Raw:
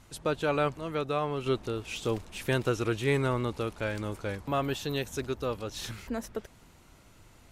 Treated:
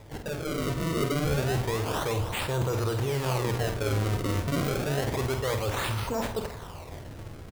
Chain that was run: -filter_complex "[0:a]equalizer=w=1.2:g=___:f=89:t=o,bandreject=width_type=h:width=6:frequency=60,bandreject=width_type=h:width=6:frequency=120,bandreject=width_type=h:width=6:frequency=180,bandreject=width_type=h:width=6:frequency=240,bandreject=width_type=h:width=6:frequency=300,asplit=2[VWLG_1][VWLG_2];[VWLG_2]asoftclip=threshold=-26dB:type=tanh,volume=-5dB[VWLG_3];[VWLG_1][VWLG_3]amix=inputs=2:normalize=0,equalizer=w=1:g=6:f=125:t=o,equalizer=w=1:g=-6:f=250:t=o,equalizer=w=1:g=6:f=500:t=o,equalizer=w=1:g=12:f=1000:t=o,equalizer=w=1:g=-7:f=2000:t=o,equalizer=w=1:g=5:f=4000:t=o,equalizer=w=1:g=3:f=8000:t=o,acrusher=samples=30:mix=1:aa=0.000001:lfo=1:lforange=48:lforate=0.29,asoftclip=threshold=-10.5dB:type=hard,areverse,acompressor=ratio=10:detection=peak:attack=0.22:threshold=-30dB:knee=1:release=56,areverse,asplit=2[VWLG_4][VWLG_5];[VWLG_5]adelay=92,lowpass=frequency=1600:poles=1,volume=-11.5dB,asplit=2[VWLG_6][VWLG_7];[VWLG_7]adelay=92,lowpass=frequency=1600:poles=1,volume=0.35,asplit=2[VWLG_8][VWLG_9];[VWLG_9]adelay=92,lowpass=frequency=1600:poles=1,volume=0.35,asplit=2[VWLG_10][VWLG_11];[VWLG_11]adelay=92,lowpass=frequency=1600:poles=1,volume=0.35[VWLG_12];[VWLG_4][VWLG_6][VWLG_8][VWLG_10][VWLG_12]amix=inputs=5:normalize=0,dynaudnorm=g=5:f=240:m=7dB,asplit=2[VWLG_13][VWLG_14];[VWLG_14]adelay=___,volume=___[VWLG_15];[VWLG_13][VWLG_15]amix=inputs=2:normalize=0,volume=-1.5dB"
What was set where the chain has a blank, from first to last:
5.5, 48, -8dB